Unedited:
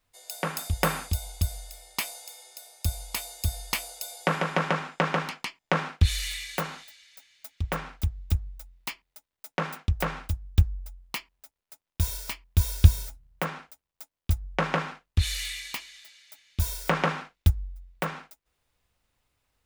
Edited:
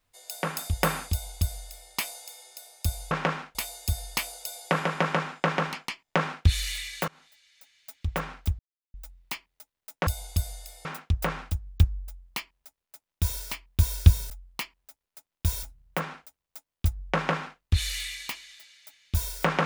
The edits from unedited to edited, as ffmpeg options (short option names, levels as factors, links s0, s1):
-filter_complex "[0:a]asplit=10[s0][s1][s2][s3][s4][s5][s6][s7][s8][s9];[s0]atrim=end=3.112[s10];[s1]atrim=start=14.598:end=15.042[s11];[s2]atrim=start=3.108:end=6.64,asetpts=PTS-STARTPTS,afade=t=out:st=3.528:d=0.004:c=hsin:silence=0.0630957[s12];[s3]atrim=start=6.64:end=8.15,asetpts=PTS-STARTPTS,afade=t=in:d=0.88:silence=0.0630957,afade=t=out:st=1.506:d=0.004:c=hsin[s13];[s4]atrim=start=8.15:end=8.5,asetpts=PTS-STARTPTS,volume=0[s14];[s5]atrim=start=8.5:end=9.632,asetpts=PTS-STARTPTS,afade=t=in:d=0.004:c=hsin[s15];[s6]atrim=start=1.118:end=1.902[s16];[s7]atrim=start=9.628:end=13.082[s17];[s8]atrim=start=10.848:end=12.182[s18];[s9]atrim=start=13.078[s19];[s10][s11]acrossfade=d=0.004:c1=hsin:c2=hsin[s20];[s12][s13][s14][s15]concat=n=4:v=0:a=1[s21];[s20][s21]acrossfade=d=0.004:c1=hsin:c2=hsin[s22];[s22][s16]acrossfade=d=0.004:c1=hsin:c2=hsin[s23];[s23][s17]acrossfade=d=0.004:c1=hsin:c2=hsin[s24];[s24][s18]acrossfade=d=0.004:c1=hsin:c2=hsin[s25];[s25][s19]acrossfade=d=0.004:c1=hsin:c2=hsin"